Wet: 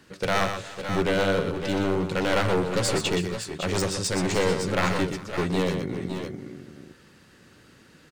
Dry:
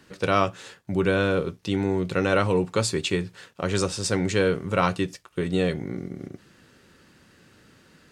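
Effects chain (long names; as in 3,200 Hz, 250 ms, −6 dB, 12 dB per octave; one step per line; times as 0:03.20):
wavefolder on the positive side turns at −19 dBFS
on a send: multi-tap delay 122/351/552/566 ms −7/−19.5/−12.5/−9.5 dB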